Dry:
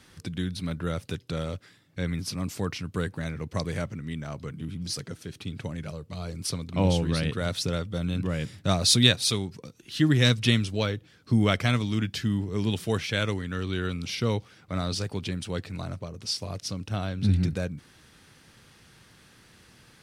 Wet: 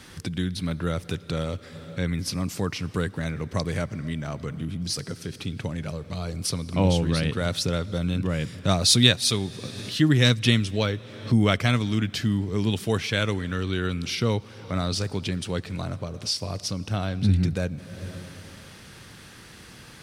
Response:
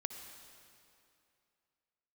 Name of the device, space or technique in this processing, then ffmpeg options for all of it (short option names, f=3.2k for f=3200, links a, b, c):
ducked reverb: -filter_complex "[0:a]asplit=3[a][b][c];[1:a]atrim=start_sample=2205[d];[b][d]afir=irnorm=-1:irlink=0[e];[c]apad=whole_len=883146[f];[e][f]sidechaincompress=threshold=-43dB:ratio=12:attack=16:release=306,volume=4.5dB[g];[a][g]amix=inputs=2:normalize=0,volume=1.5dB"